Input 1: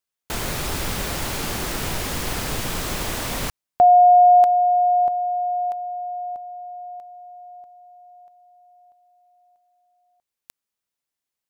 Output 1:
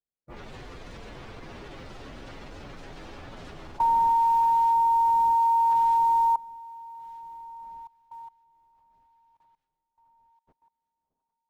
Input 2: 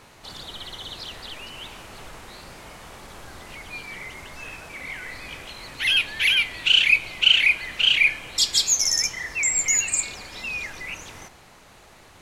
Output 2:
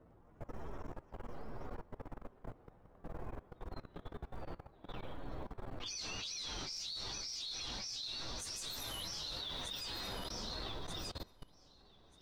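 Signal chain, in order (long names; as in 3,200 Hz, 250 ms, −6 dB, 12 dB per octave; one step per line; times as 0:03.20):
partials spread apart or drawn together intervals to 124%
in parallel at −2 dB: compressor whose output falls as the input rises −25 dBFS, ratio −1
on the sum: low-pass that shuts in the quiet parts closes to 590 Hz, open at −15 dBFS
on a send: delay that swaps between a low-pass and a high-pass 617 ms, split 1,200 Hz, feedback 60%, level −9 dB
on the sum: brickwall limiter −16.5 dBFS
floating-point word with a short mantissa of 4 bits
dynamic equaliser 410 Hz, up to +3 dB, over −33 dBFS, Q 0.73
four-comb reverb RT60 2.9 s, combs from 25 ms, DRR 13 dB
output level in coarse steps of 21 dB
high-shelf EQ 8,300 Hz −6.5 dB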